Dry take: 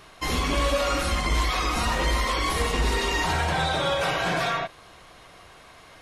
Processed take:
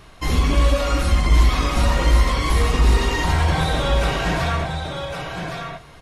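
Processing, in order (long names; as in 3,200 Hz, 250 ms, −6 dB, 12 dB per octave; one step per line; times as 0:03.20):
low-shelf EQ 220 Hz +11.5 dB
single-tap delay 1,111 ms −6 dB
on a send at −17.5 dB: convolution reverb RT60 1.6 s, pre-delay 4 ms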